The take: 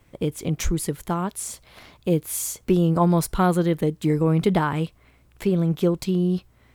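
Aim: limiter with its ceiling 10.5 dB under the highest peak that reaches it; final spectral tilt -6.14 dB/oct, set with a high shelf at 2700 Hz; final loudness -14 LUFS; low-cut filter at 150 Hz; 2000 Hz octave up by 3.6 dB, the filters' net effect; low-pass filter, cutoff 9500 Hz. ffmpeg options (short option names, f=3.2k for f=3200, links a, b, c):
-af "highpass=150,lowpass=9.5k,equalizer=f=2k:t=o:g=7.5,highshelf=f=2.7k:g=-6,volume=14.5dB,alimiter=limit=-3.5dB:level=0:latency=1"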